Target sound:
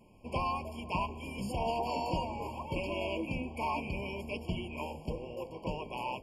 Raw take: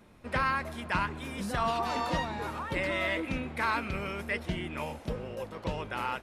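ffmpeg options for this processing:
-filter_complex "[0:a]asplit=2[a][b];[b]asetrate=29433,aresample=44100,atempo=1.49831,volume=-9dB[c];[a][c]amix=inputs=2:normalize=0,bandreject=f=52.19:t=h:w=4,bandreject=f=104.38:t=h:w=4,bandreject=f=156.57:t=h:w=4,bandreject=f=208.76:t=h:w=4,bandreject=f=260.95:t=h:w=4,bandreject=f=313.14:t=h:w=4,bandreject=f=365.33:t=h:w=4,bandreject=f=417.52:t=h:w=4,bandreject=f=469.71:t=h:w=4,bandreject=f=521.9:t=h:w=4,bandreject=f=574.09:t=h:w=4,bandreject=f=626.28:t=h:w=4,afftfilt=real='re*eq(mod(floor(b*sr/1024/1100),2),0)':imag='im*eq(mod(floor(b*sr/1024/1100),2),0)':win_size=1024:overlap=0.75,volume=-2dB"

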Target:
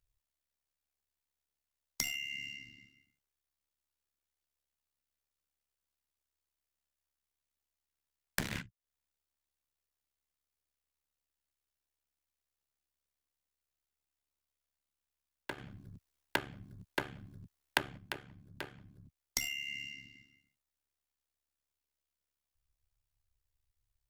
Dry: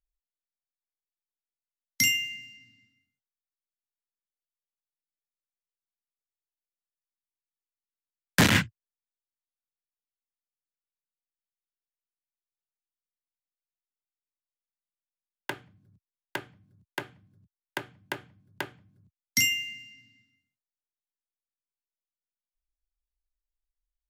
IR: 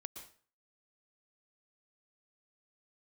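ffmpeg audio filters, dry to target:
-filter_complex "[0:a]aeval=exprs='clip(val(0),-1,0.0708)':c=same,acompressor=threshold=-39dB:ratio=16,tremolo=f=70:d=0.824,asettb=1/sr,asplit=3[a][b][c];[a]atrim=end=15.584[d];[b]atrim=start=15.58:end=17.98,asetpts=PTS-STARTPTS,afade=t=in:d=0.004:c=qsin,afade=t=out:st=2.396:d=0.004:c=qsin,acontrast=58[e];[c]atrim=start=17.976[f];[d][e]acrossfade=d=0.004:c1=hsin:c2=qsin[g];[g][f]acrossfade=d=0.004:c1=qsin:c2=hsin,volume=8dB"

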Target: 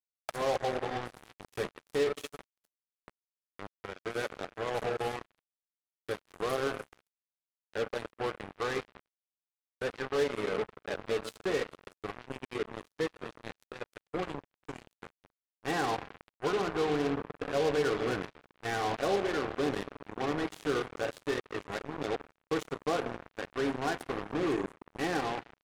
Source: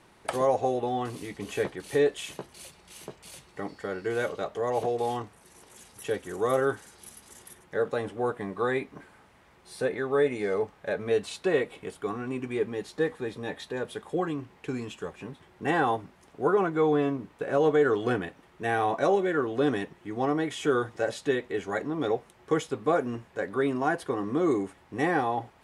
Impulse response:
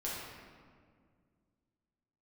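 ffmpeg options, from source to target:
-filter_complex "[0:a]asplit=2[a][b];[1:a]atrim=start_sample=2205,asetrate=27783,aresample=44100,highshelf=f=3.1k:g=-3.5[c];[b][c]afir=irnorm=-1:irlink=0,volume=-11dB[d];[a][d]amix=inputs=2:normalize=0,acrusher=bits=3:mix=0:aa=0.5,volume=-8.5dB"

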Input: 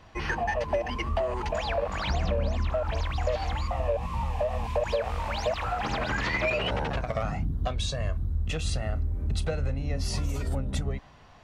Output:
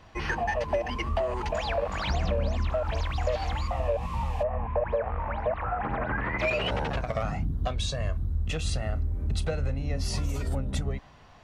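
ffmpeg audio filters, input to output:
-filter_complex "[0:a]asplit=3[a][b][c];[a]afade=t=out:st=4.42:d=0.02[d];[b]lowpass=f=1.9k:w=0.5412,lowpass=f=1.9k:w=1.3066,afade=t=in:st=4.42:d=0.02,afade=t=out:st=6.38:d=0.02[e];[c]afade=t=in:st=6.38:d=0.02[f];[d][e][f]amix=inputs=3:normalize=0"

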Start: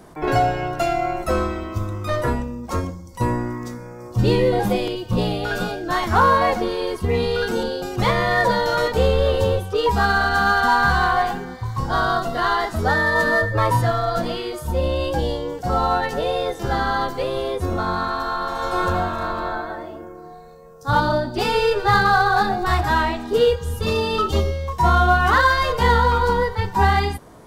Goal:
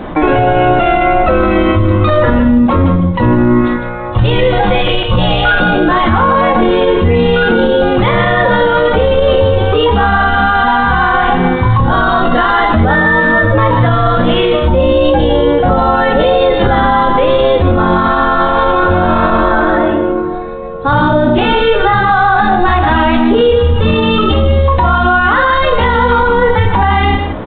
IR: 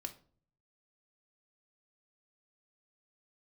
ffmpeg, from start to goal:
-filter_complex "[0:a]asettb=1/sr,asplit=3[a][b][c];[a]atrim=end=3.614[d];[b]atrim=start=3.61:end=5.6,asetpts=PTS-STARTPTS,afade=t=in:d=0.004:c=qsin,afade=t=out:st=1.986:d=0.004:c=qsin,equalizer=f=260:t=o:w=1.6:g=-14.5[e];[c]atrim=start=5.596[f];[d][e]acrossfade=d=0.004:c1=hsin:c2=qsin[g];[g][f]acrossfade=d=0.004:c1=qsin:c2=hsin,acompressor=threshold=-21dB:ratio=10,aecho=1:1:153:0.316[h];[1:a]atrim=start_sample=2205,atrim=end_sample=3087[i];[h][i]afir=irnorm=-1:irlink=0,alimiter=level_in=25.5dB:limit=-1dB:release=50:level=0:latency=1,volume=-1dB" -ar 8000 -c:a adpcm_g726 -b:a 40k

